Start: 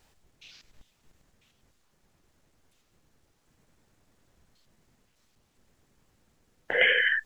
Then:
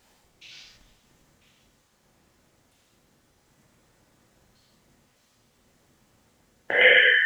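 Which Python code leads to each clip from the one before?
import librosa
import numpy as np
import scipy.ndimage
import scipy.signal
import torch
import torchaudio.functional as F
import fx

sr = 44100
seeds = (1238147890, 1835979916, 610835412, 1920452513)

y = fx.highpass(x, sr, hz=77.0, slope=6)
y = fx.rev_gated(y, sr, seeds[0], gate_ms=180, shape='flat', drr_db=-2.0)
y = F.gain(torch.from_numpy(y), 2.5).numpy()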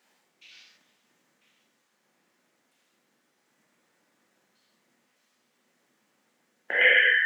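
y = scipy.signal.sosfilt(scipy.signal.butter(4, 190.0, 'highpass', fs=sr, output='sos'), x)
y = fx.peak_eq(y, sr, hz=1900.0, db=5.5, octaves=1.2)
y = F.gain(torch.from_numpy(y), -7.5).numpy()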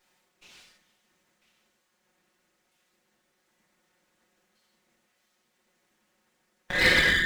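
y = fx.lower_of_two(x, sr, delay_ms=5.5)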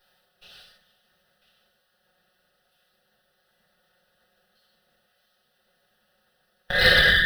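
y = fx.fixed_phaser(x, sr, hz=1500.0, stages=8)
y = F.gain(torch.from_numpy(y), 7.0).numpy()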